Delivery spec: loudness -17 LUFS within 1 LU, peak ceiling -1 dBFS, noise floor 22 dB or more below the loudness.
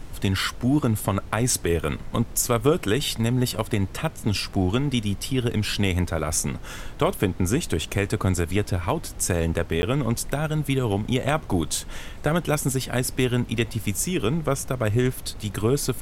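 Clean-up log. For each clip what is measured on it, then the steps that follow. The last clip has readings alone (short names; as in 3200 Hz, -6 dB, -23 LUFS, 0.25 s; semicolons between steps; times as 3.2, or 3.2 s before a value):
dropouts 1; longest dropout 10 ms; noise floor -38 dBFS; noise floor target -47 dBFS; loudness -24.5 LUFS; peak -7.5 dBFS; loudness target -17.0 LUFS
-> interpolate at 9.82, 10 ms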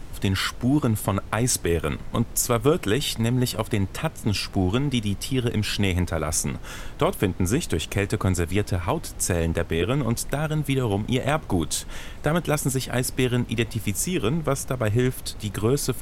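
dropouts 0; noise floor -38 dBFS; noise floor target -47 dBFS
-> noise print and reduce 9 dB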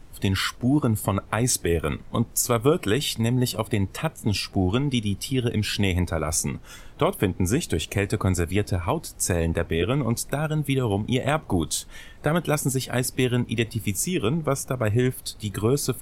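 noise floor -45 dBFS; noise floor target -47 dBFS
-> noise print and reduce 6 dB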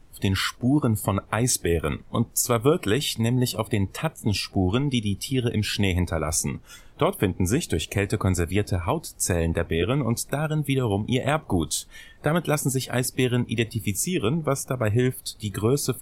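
noise floor -50 dBFS; loudness -24.5 LUFS; peak -7.5 dBFS; loudness target -17.0 LUFS
-> gain +7.5 dB; limiter -1 dBFS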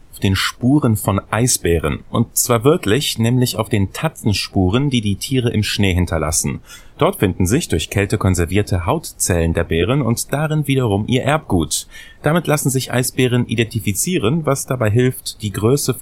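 loudness -17.5 LUFS; peak -1.0 dBFS; noise floor -42 dBFS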